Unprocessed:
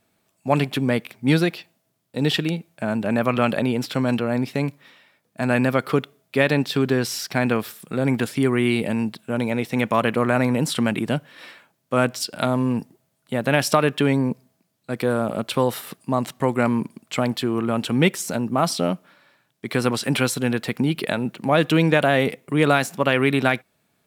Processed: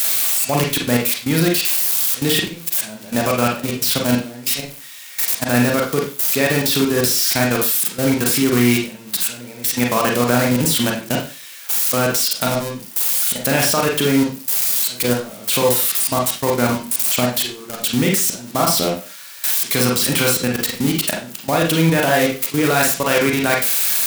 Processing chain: zero-crossing glitches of -11.5 dBFS; level held to a coarse grid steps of 20 dB; reverberation RT60 0.35 s, pre-delay 33 ms, DRR -1 dB; trim +2 dB

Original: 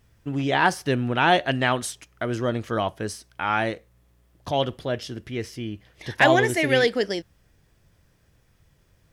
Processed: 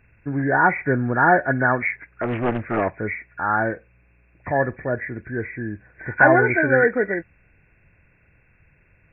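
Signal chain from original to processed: knee-point frequency compression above 1.4 kHz 4:1; 1.86–2.98 s: loudspeaker Doppler distortion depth 0.84 ms; trim +2.5 dB

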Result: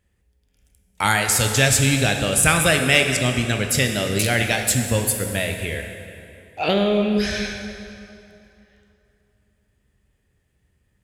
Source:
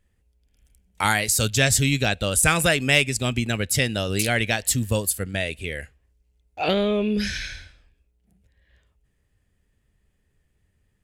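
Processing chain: high-pass 45 Hz; plate-style reverb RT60 2.8 s, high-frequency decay 0.75×, DRR 4 dB; trim +1.5 dB

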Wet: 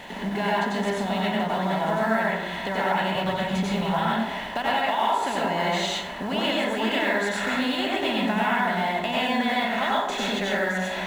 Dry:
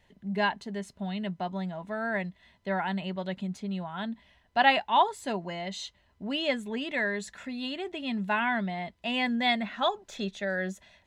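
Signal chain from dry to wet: spectral levelling over time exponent 0.6; 3.15–3.90 s: resonant low shelf 170 Hz +9 dB, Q 1.5; in parallel at -12 dB: companded quantiser 4-bit; on the sum: compression, threshold -30 dBFS, peak gain reduction 16 dB; plate-style reverb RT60 0.88 s, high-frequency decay 0.45×, pre-delay 80 ms, DRR -6 dB; trim +2.5 dB

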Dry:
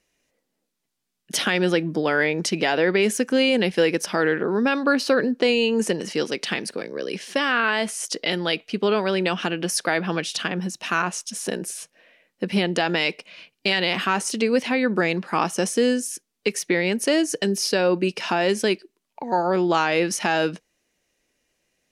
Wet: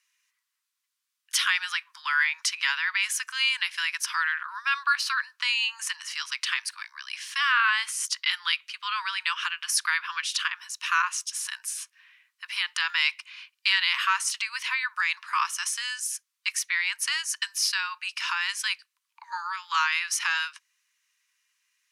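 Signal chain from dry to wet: steep high-pass 980 Hz 96 dB/octave

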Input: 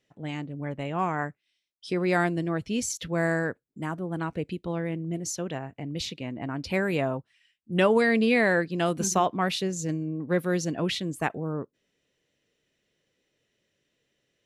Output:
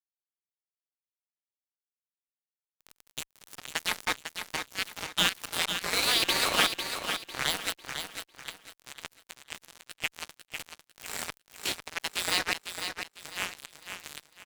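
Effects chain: reverse the whole clip; steep high-pass 230 Hz 36 dB/octave; in parallel at -6 dB: crossover distortion -40 dBFS; on the sum: crackle 77 per s -44 dBFS; spectral gate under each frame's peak -25 dB weak; de-esser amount 100%; fuzz box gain 34 dB, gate -42 dBFS; feedback delay 500 ms, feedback 32%, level -7.5 dB

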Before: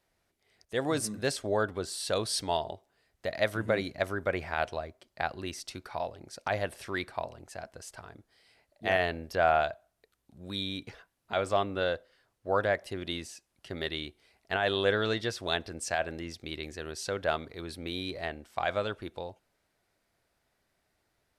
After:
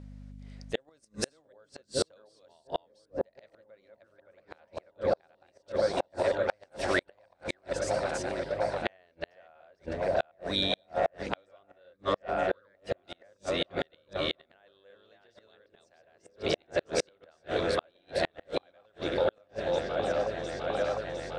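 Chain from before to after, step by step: chunks repeated in reverse 382 ms, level -1 dB; peaking EQ 540 Hz +10 dB 0.23 oct; hum notches 60/120 Hz; hum 50 Hz, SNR 17 dB; 5.72–6.65 s: gate -29 dBFS, range -26 dB; 11.93–12.75 s: static phaser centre 2.7 kHz, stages 6; delay with an opening low-pass 706 ms, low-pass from 400 Hz, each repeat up 1 oct, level -6 dB; inverted gate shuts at -20 dBFS, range -41 dB; low-pass 8.3 kHz 24 dB/octave; bass shelf 200 Hz -9 dB; trim +6.5 dB

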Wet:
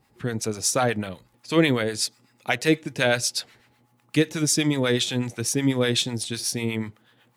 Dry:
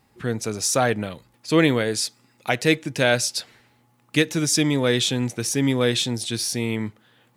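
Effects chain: harmonic tremolo 8.1 Hz, depth 70%, crossover 760 Hz; trim +1.5 dB

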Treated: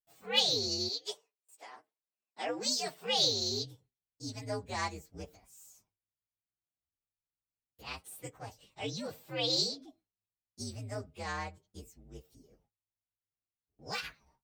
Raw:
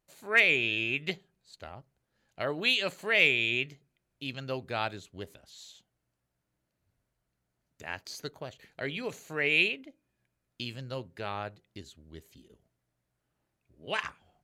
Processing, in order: frequency axis rescaled in octaves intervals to 123%; 0.88–3.17 s: high-pass 490 Hz -> 160 Hz 24 dB/octave; gate with hold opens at -57 dBFS

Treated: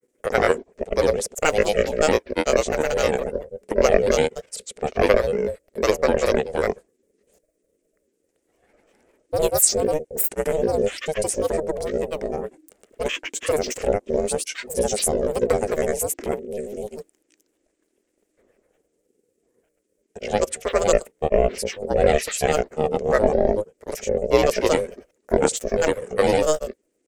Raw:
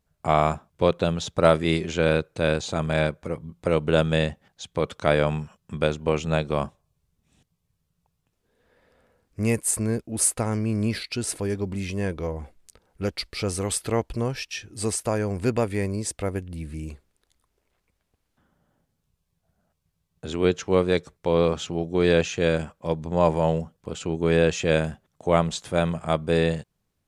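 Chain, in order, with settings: granulator 100 ms, pitch spread up and down by 12 st; ring modulator 310 Hz; ten-band graphic EQ 125 Hz -9 dB, 500 Hz +11 dB, 1 kHz -9 dB, 2 kHz +5 dB, 4 kHz -6 dB, 8 kHz +12 dB; trim +4 dB

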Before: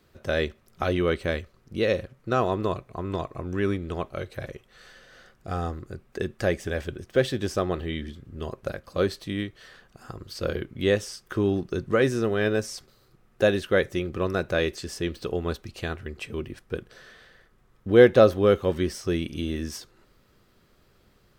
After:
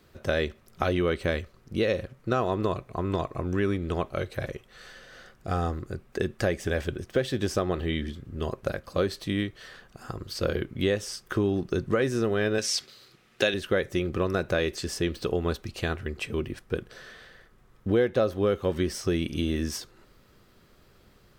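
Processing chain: 12.58–13.54 s: frequency weighting D; compression 4:1, threshold -25 dBFS, peak gain reduction 13.5 dB; trim +3 dB

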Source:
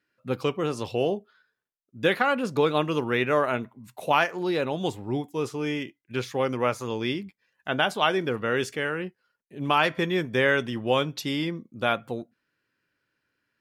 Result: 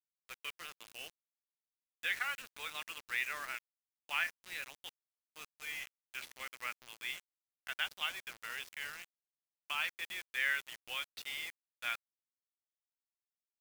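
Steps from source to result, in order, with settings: 7.83–10.35 s: dynamic bell 1.8 kHz, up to -6 dB, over -39 dBFS, Q 2.4; ladder band-pass 2.5 kHz, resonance 40%; word length cut 8-bit, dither none; trim +1.5 dB

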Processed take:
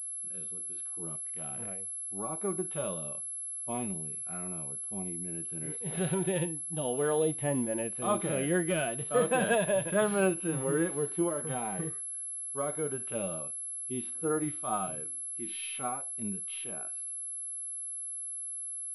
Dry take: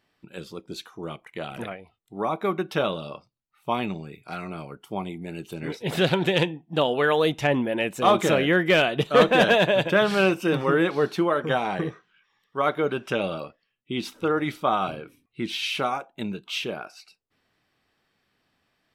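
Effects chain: harmonic-percussive split percussive -17 dB; treble shelf 4 kHz -11.5 dB; class-D stage that switches slowly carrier 11 kHz; trim -5.5 dB

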